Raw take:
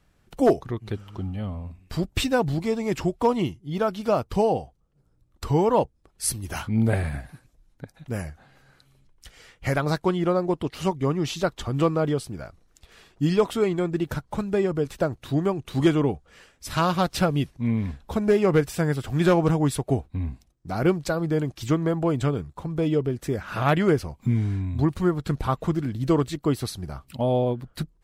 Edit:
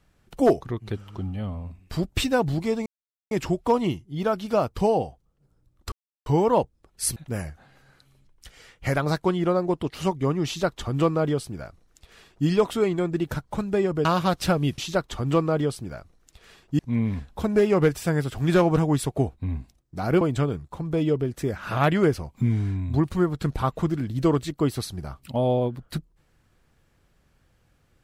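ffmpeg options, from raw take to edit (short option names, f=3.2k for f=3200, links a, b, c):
-filter_complex "[0:a]asplit=8[a][b][c][d][e][f][g][h];[a]atrim=end=2.86,asetpts=PTS-STARTPTS,afade=t=out:st=2.856:d=0.004:c=hsin,apad=pad_dur=0.45[i];[b]atrim=start=2.86:end=5.47,asetpts=PTS-STARTPTS,afade=t=in:d=0.004:c=hsin,afade=t=out:st=2.606:d=0.004:c=hsin,apad=pad_dur=0.34[j];[c]atrim=start=5.47:end=6.372,asetpts=PTS-STARTPTS,afade=t=in:d=0.004:c=hsin[k];[d]atrim=start=7.958:end=14.852[l];[e]atrim=start=16.778:end=17.512[m];[f]atrim=start=11.258:end=13.272[n];[g]atrim=start=17.508:end=20.932[o];[h]atrim=start=22.058[p];[i][j][k]concat=n=3:v=0:a=1[q];[q][l]acrossfade=d=0.004:c1=hsin:c2=hsin[r];[r][m]acrossfade=d=0.004:c1=hsin:c2=hsin[s];[s][n]acrossfade=d=0.004:c1=hsin:c2=hsin[t];[t][o]acrossfade=d=0.004:c1=hsin:c2=hsin[u];[u][p]acrossfade=d=0.004:c1=hsin:c2=hsin"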